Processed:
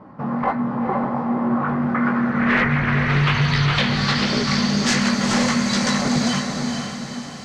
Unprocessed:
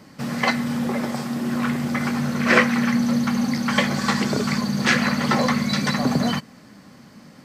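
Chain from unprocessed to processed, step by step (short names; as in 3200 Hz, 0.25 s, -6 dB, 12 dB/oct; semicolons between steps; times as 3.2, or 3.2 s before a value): 3.09–3.65 spectral gain 930–7900 Hz +9 dB; in parallel at 0 dB: compressor, threshold -28 dBFS, peak gain reduction 16.5 dB; on the sum: requantised 8-bit, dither none; chorus 1.4 Hz, delay 15.5 ms, depth 5.7 ms; 2.64–3.79 frequency shift -94 Hz; wavefolder -16 dBFS; low-pass sweep 1000 Hz -> 7100 Hz, 1.37–5.02; on a send: diffused feedback echo 0.473 s, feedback 48%, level -4.5 dB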